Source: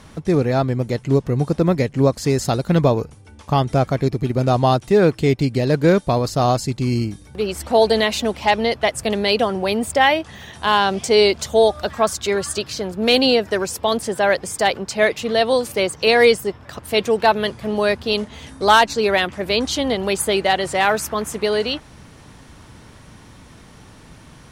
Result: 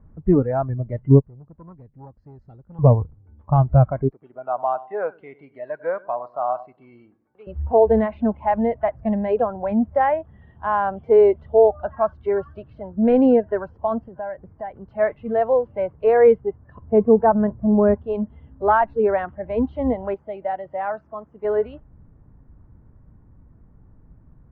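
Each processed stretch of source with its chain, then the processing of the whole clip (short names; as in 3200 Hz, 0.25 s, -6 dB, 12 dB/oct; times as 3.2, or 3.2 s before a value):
1.2–2.79 pre-emphasis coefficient 0.8 + core saturation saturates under 740 Hz
4.09–7.47 BPF 690–5700 Hz + feedback echo 98 ms, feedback 43%, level -16 dB
14.04–14.81 air absorption 170 m + compressor 12:1, threshold -22 dBFS + Doppler distortion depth 0.12 ms
16.82–17.94 LPF 1600 Hz + low shelf 470 Hz +5 dB
20.14–21.45 HPF 370 Hz 6 dB/oct + bell 1500 Hz -6 dB 2.5 oct
whole clip: spectral noise reduction 16 dB; LPF 1700 Hz 24 dB/oct; tilt -4.5 dB/oct; gain -4 dB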